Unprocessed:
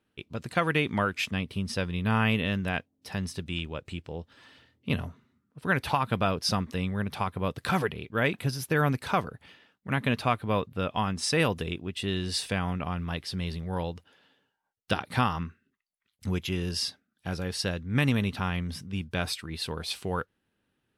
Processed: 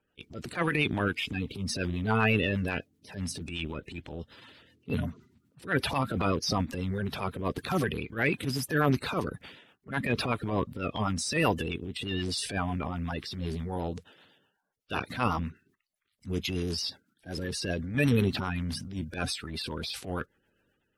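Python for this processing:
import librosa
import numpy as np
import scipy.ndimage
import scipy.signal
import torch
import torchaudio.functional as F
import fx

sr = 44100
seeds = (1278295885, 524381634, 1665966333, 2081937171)

p1 = fx.spec_quant(x, sr, step_db=30)
p2 = fx.level_steps(p1, sr, step_db=14)
p3 = p1 + (p2 * 10.0 ** (-1.5 / 20.0))
p4 = fx.rotary(p3, sr, hz=8.0)
y = fx.transient(p4, sr, attack_db=-11, sustain_db=5)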